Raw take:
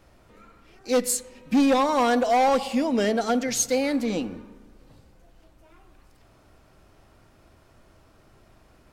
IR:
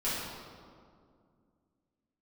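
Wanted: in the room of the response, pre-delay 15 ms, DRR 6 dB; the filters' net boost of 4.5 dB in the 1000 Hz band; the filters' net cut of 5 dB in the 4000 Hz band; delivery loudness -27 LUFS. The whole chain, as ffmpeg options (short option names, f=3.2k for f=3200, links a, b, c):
-filter_complex "[0:a]equalizer=f=1k:t=o:g=6.5,equalizer=f=4k:t=o:g=-7,asplit=2[a][b];[1:a]atrim=start_sample=2205,adelay=15[c];[b][c]afir=irnorm=-1:irlink=0,volume=-14dB[d];[a][d]amix=inputs=2:normalize=0,volume=-6.5dB"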